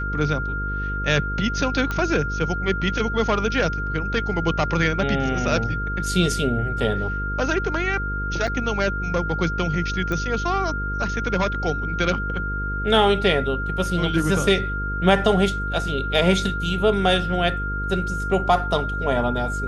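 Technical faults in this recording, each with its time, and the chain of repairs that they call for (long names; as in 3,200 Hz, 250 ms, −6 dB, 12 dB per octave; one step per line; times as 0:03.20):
mains buzz 50 Hz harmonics 10 −28 dBFS
whistle 1,400 Hz −27 dBFS
0:01.91: click −12 dBFS
0:08.47–0:08.48: drop-out 5.2 ms
0:10.12: click −15 dBFS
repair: click removal
hum removal 50 Hz, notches 10
notch filter 1,400 Hz, Q 30
repair the gap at 0:08.47, 5.2 ms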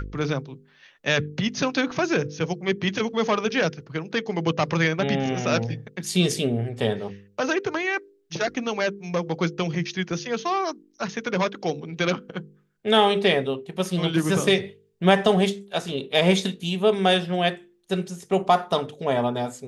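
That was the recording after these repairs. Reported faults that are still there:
none of them is left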